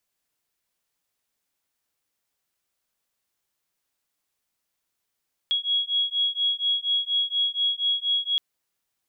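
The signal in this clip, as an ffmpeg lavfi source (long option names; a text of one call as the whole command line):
ffmpeg -f lavfi -i "aevalsrc='0.0562*(sin(2*PI*3320*t)+sin(2*PI*3324.2*t))':duration=2.87:sample_rate=44100" out.wav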